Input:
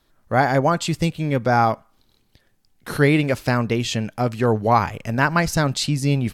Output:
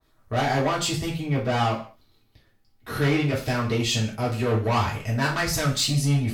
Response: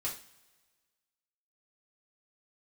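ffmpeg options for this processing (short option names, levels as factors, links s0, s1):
-filter_complex "[0:a]asettb=1/sr,asplit=3[s0][s1][s2];[s0]atrim=end=1.204[s3];[s1]atrim=start=1.2:end=3.47,asetpts=PTS-STARTPTS,afade=t=in:d=0.004:c=qsin,afade=t=out:st=2.266:d=0.004:c=qsin,equalizer=f=8300:w=0.69:g=-7[s4];[s2]atrim=start=3.466[s5];[s3][s4]acrossfade=d=0.004:c1=hsin:c2=qsin[s6];[s6][s5]acrossfade=d=0.004:c1=qsin:c2=hsin,asoftclip=type=tanh:threshold=0.126[s7];[1:a]atrim=start_sample=2205,afade=t=out:st=0.27:d=0.01,atrim=end_sample=12348[s8];[s7][s8]afir=irnorm=-1:irlink=0,adynamicequalizer=threshold=0.0224:dfrequency=2100:dqfactor=0.7:tfrequency=2100:tqfactor=0.7:attack=5:release=100:ratio=0.375:range=2:mode=boostabove:tftype=highshelf,volume=0.75"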